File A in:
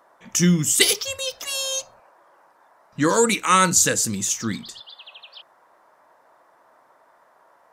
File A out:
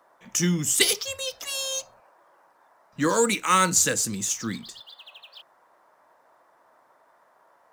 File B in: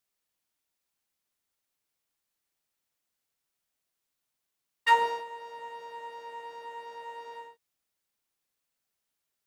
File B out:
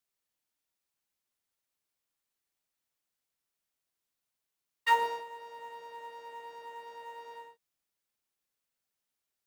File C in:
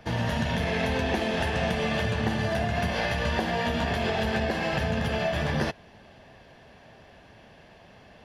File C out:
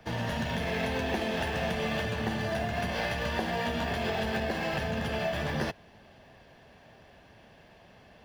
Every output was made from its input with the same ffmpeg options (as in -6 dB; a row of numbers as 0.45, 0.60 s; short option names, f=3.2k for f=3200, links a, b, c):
-filter_complex "[0:a]acrossover=split=170|900[a][b][c];[a]asoftclip=type=tanh:threshold=-30.5dB[d];[c]acrusher=bits=5:mode=log:mix=0:aa=0.000001[e];[d][b][e]amix=inputs=3:normalize=0,volume=-3.5dB"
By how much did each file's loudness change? -3.5, -3.5, -4.0 LU